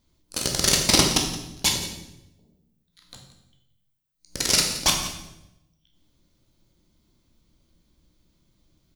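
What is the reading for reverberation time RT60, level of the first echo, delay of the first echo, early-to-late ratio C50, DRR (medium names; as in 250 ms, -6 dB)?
0.90 s, -14.5 dB, 172 ms, 4.5 dB, 0.5 dB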